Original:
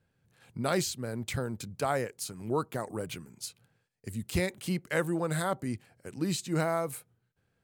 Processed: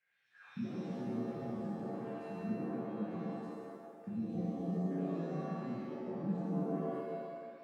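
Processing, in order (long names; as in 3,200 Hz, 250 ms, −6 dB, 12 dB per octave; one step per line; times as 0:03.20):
downward compressor, threshold −37 dBFS, peak gain reduction 13.5 dB
envelope filter 200–2,300 Hz, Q 7.4, down, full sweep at −46.5 dBFS
low-shelf EQ 83 Hz −11.5 dB
reverb with rising layers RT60 1.6 s, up +7 semitones, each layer −2 dB, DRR −6.5 dB
level +7.5 dB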